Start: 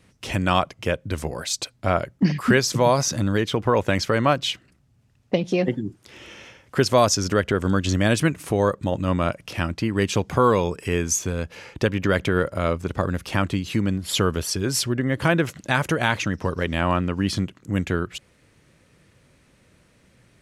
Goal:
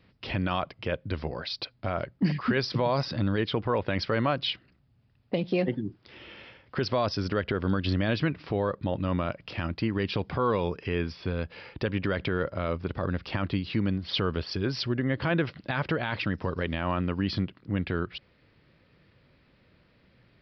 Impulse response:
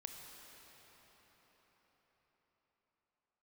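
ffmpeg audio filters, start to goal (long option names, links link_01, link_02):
-af "alimiter=limit=-12dB:level=0:latency=1:release=32,aresample=11025,aresample=44100,volume=-4dB"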